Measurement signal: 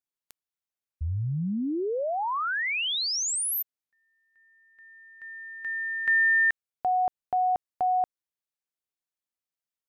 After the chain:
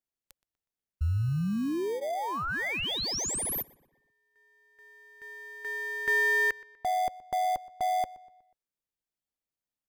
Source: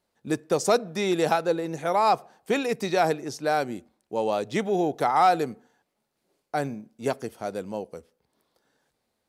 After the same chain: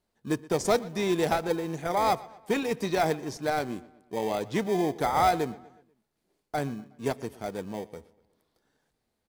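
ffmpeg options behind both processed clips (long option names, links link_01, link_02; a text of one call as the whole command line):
ffmpeg -i in.wav -filter_complex "[0:a]lowshelf=frequency=61:gain=10,bandreject=frequency=540:width=12,asplit=2[link_01][link_02];[link_02]acrusher=samples=32:mix=1:aa=0.000001,volume=-8.5dB[link_03];[link_01][link_03]amix=inputs=2:normalize=0,asplit=2[link_04][link_05];[link_05]adelay=122,lowpass=frequency=4300:poles=1,volume=-20dB,asplit=2[link_06][link_07];[link_07]adelay=122,lowpass=frequency=4300:poles=1,volume=0.48,asplit=2[link_08][link_09];[link_09]adelay=122,lowpass=frequency=4300:poles=1,volume=0.48,asplit=2[link_10][link_11];[link_11]adelay=122,lowpass=frequency=4300:poles=1,volume=0.48[link_12];[link_04][link_06][link_08][link_10][link_12]amix=inputs=5:normalize=0,volume=-4dB" out.wav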